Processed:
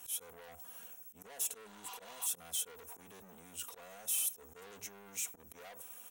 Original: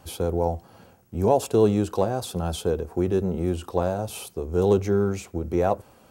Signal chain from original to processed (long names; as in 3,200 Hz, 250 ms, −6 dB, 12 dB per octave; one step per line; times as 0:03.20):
healed spectral selection 0:01.68–0:02.24, 740–7,500 Hz before
harmonic generator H 8 −28 dB, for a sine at −7.5 dBFS
high-pass filter 59 Hz 12 dB per octave
parametric band 4,400 Hz −13 dB 0.21 octaves
notch filter 4,800 Hz, Q 6.4
comb filter 4.2 ms, depth 65%
volume swells 157 ms
brickwall limiter −27.5 dBFS, peak gain reduction 19.5 dB
soft clipping −37 dBFS, distortion −10 dB
first-order pre-emphasis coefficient 0.97
level +8 dB